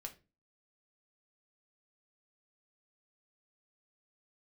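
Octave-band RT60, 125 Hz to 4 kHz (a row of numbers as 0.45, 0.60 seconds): 0.45, 0.45, 0.35, 0.25, 0.25, 0.25 seconds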